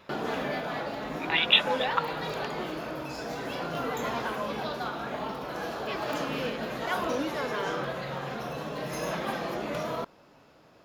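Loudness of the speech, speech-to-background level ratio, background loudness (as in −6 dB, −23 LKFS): −25.0 LKFS, 8.0 dB, −33.0 LKFS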